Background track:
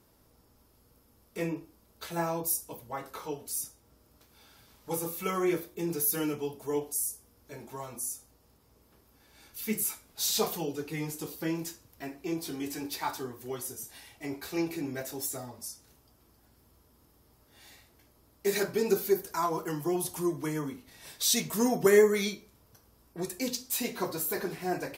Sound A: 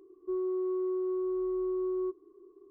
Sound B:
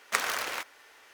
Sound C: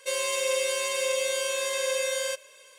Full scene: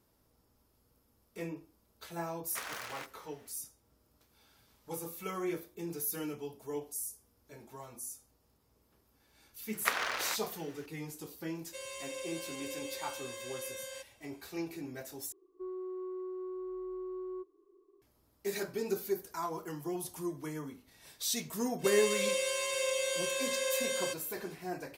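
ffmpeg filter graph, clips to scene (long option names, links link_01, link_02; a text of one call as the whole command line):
ffmpeg -i bed.wav -i cue0.wav -i cue1.wav -i cue2.wav -filter_complex "[2:a]asplit=2[link_01][link_02];[3:a]asplit=2[link_03][link_04];[0:a]volume=-7.5dB[link_05];[link_01]asoftclip=type=tanh:threshold=-21dB[link_06];[link_02]acrossover=split=5700[link_07][link_08];[link_08]acompressor=threshold=-50dB:ratio=4:attack=1:release=60[link_09];[link_07][link_09]amix=inputs=2:normalize=0[link_10];[1:a]equalizer=frequency=130:width_type=o:width=2:gain=-15[link_11];[link_05]asplit=2[link_12][link_13];[link_12]atrim=end=15.324[link_14];[link_11]atrim=end=2.7,asetpts=PTS-STARTPTS,volume=-4.5dB[link_15];[link_13]atrim=start=18.016[link_16];[link_06]atrim=end=1.13,asetpts=PTS-STARTPTS,volume=-10dB,afade=type=in:duration=0.1,afade=type=out:start_time=1.03:duration=0.1,adelay=2430[link_17];[link_10]atrim=end=1.13,asetpts=PTS-STARTPTS,volume=-2.5dB,afade=type=in:duration=0.004:curve=hsin,afade=type=out:start_time=1.126:duration=0.004:curve=hsin,adelay=9730[link_18];[link_03]atrim=end=2.78,asetpts=PTS-STARTPTS,volume=-15.5dB,afade=type=in:duration=0.004:curve=hsin,afade=type=out:start_time=2.776:duration=0.004:curve=hsin,adelay=11670[link_19];[link_04]atrim=end=2.78,asetpts=PTS-STARTPTS,volume=-5.5dB,afade=type=in:duration=0.02,afade=type=out:start_time=2.76:duration=0.02,adelay=21780[link_20];[link_14][link_15]acrossfade=duration=0.004:curve1=hsin:curve2=hsin[link_21];[link_21][link_16]acrossfade=duration=0.004:curve1=hsin:curve2=hsin[link_22];[link_22][link_17][link_18][link_19][link_20]amix=inputs=5:normalize=0" out.wav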